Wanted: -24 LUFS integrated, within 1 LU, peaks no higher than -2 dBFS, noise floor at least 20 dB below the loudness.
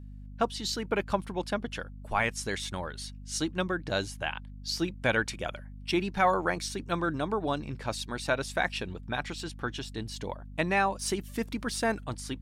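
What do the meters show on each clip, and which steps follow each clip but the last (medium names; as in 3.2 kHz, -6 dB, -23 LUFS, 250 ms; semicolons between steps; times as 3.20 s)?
hum 50 Hz; highest harmonic 250 Hz; hum level -42 dBFS; loudness -31.5 LUFS; peak level -13.0 dBFS; loudness target -24.0 LUFS
-> hum notches 50/100/150/200/250 Hz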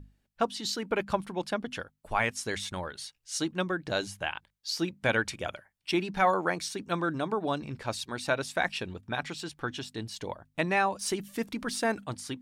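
hum not found; loudness -31.5 LUFS; peak level -13.0 dBFS; loudness target -24.0 LUFS
-> trim +7.5 dB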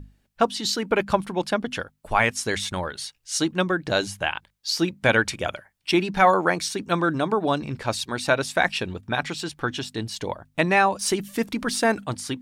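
loudness -24.5 LUFS; peak level -5.5 dBFS; noise floor -68 dBFS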